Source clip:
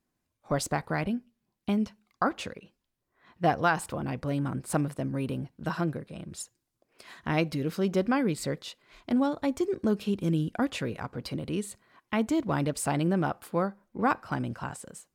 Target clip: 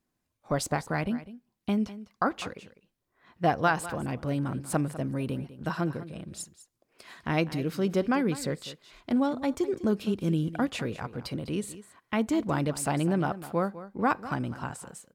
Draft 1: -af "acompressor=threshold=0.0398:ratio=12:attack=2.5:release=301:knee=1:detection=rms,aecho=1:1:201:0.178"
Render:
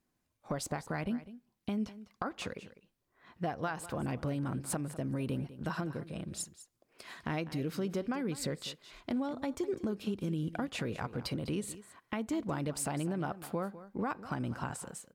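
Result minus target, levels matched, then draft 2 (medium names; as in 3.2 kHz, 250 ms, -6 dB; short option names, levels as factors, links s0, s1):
compression: peak gain reduction +13 dB
-af "aecho=1:1:201:0.178"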